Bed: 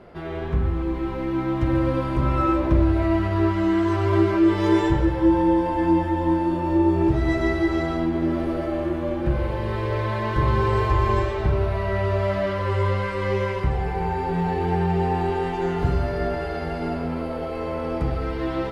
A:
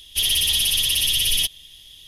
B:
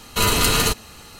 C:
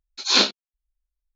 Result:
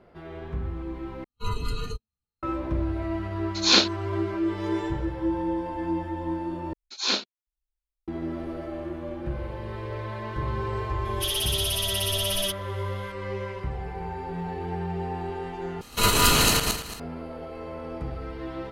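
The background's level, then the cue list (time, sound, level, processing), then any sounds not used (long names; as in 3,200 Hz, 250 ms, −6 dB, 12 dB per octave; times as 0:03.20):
bed −9 dB
0:01.24: overwrite with B −14.5 dB + every bin expanded away from the loudest bin 2.5 to 1
0:03.37: mix in C −1 dB
0:06.73: overwrite with C −8 dB
0:11.05: mix in A −8 dB
0:15.81: overwrite with B −4.5 dB + feedback delay that plays each chunk backwards 113 ms, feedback 48%, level 0 dB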